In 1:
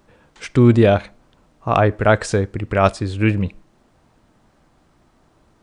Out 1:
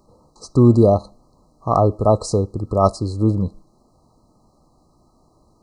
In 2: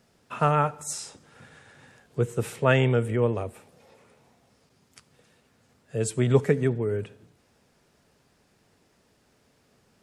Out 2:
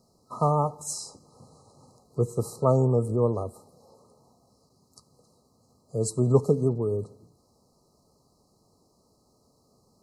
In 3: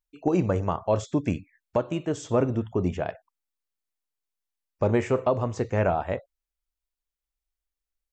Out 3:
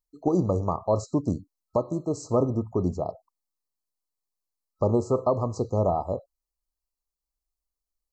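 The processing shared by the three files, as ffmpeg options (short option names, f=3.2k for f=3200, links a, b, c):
-af "afftfilt=real='re*(1-between(b*sr/4096,1300,3900))':imag='im*(1-between(b*sr/4096,1300,3900))':win_size=4096:overlap=0.75"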